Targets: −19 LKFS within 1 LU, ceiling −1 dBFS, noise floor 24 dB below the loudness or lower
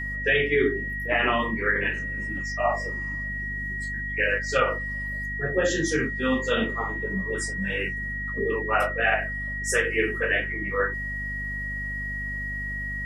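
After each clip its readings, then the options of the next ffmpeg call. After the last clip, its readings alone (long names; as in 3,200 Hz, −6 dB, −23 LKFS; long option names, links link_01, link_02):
mains hum 50 Hz; hum harmonics up to 250 Hz; level of the hum −33 dBFS; interfering tone 1,900 Hz; level of the tone −30 dBFS; integrated loudness −26.0 LKFS; sample peak −9.5 dBFS; target loudness −19.0 LKFS
→ -af "bandreject=frequency=50:width_type=h:width=6,bandreject=frequency=100:width_type=h:width=6,bandreject=frequency=150:width_type=h:width=6,bandreject=frequency=200:width_type=h:width=6,bandreject=frequency=250:width_type=h:width=6"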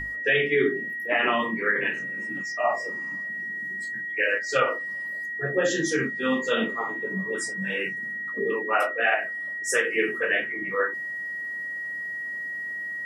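mains hum none found; interfering tone 1,900 Hz; level of the tone −30 dBFS
→ -af "bandreject=frequency=1900:width=30"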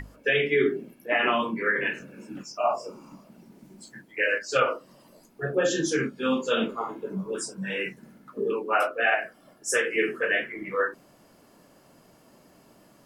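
interfering tone none found; integrated loudness −26.5 LKFS; sample peak −9.0 dBFS; target loudness −19.0 LKFS
→ -af "volume=7.5dB"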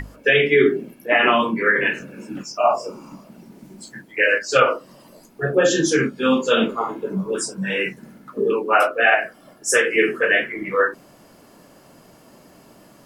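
integrated loudness −19.0 LKFS; sample peak −1.5 dBFS; background noise floor −50 dBFS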